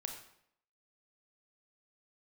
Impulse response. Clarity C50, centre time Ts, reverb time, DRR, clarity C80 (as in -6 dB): 6.0 dB, 24 ms, 0.70 s, 3.5 dB, 9.0 dB